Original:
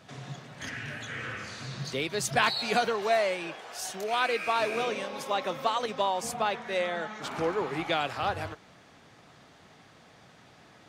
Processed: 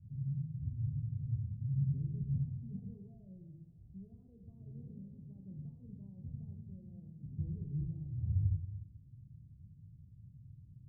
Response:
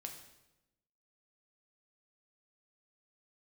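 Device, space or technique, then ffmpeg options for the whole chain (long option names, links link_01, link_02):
club heard from the street: -filter_complex "[0:a]alimiter=limit=-20.5dB:level=0:latency=1,lowpass=frequency=120:width=0.5412,lowpass=frequency=120:width=1.3066[link_01];[1:a]atrim=start_sample=2205[link_02];[link_01][link_02]afir=irnorm=-1:irlink=0,volume=15.5dB"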